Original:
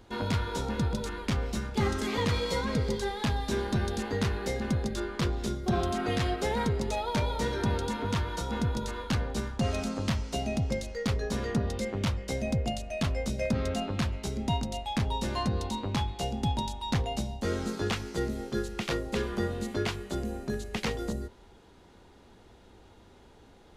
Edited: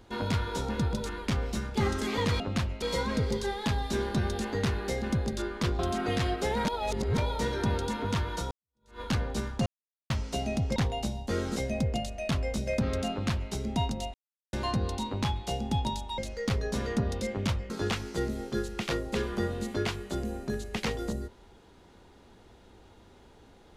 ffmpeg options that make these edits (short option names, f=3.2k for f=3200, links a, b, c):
-filter_complex "[0:a]asplit=15[a][b][c][d][e][f][g][h][i][j][k][l][m][n][o];[a]atrim=end=2.402[p];[b]atrim=start=13.828:end=14.252[q];[c]atrim=start=2.398:end=5.372[r];[d]atrim=start=5.788:end=6.652[s];[e]atrim=start=6.648:end=7.182,asetpts=PTS-STARTPTS,areverse[t];[f]atrim=start=7.178:end=8.51,asetpts=PTS-STARTPTS,afade=t=out:st=1.328:d=0.004:c=hsin[u];[g]atrim=start=8.51:end=9.66,asetpts=PTS-STARTPTS,afade=t=in:d=0.5:c=exp,afade=t=out:st=1.146:d=0.004:c=hsin[v];[h]atrim=start=9.66:end=10.1,asetpts=PTS-STARTPTS,volume=0[w];[i]atrim=start=10.1:end=10.762,asetpts=PTS-STARTPTS,afade=t=in:d=0.004:c=hsin[x];[j]atrim=start=16.898:end=17.702[y];[k]atrim=start=12.278:end=14.86,asetpts=PTS-STARTPTS,afade=t=out:st=2.578:d=0.004:c=hsin[z];[l]atrim=start=14.86:end=15.25,asetpts=PTS-STARTPTS,volume=0[aa];[m]atrim=start=15.25:end=16.902,asetpts=PTS-STARTPTS,afade=t=in:d=0.004:c=hsin[ab];[n]atrim=start=10.758:end=12.282[ac];[o]atrim=start=17.698[ad];[p][q]acrossfade=d=0.004:c1=hsin:c2=hsin[ae];[ae][r]acrossfade=d=0.004:c1=hsin:c2=hsin[af];[af][s]acrossfade=d=0.004:c1=hsin:c2=hsin[ag];[ag][t]acrossfade=d=0.004:c1=hsin:c2=hsin[ah];[u][v][w][x]concat=n=4:v=0:a=1[ai];[ah][ai]acrossfade=d=0.004:c1=hsin:c2=hsin[aj];[aj][y]acrossfade=d=0.004:c1=hsin:c2=hsin[ak];[z][aa][ab]concat=n=3:v=0:a=1[al];[ak][al]acrossfade=d=0.004:c1=hsin:c2=hsin[am];[am][ac]acrossfade=d=0.004:c1=hsin:c2=hsin[an];[an][ad]acrossfade=d=0.004:c1=hsin:c2=hsin"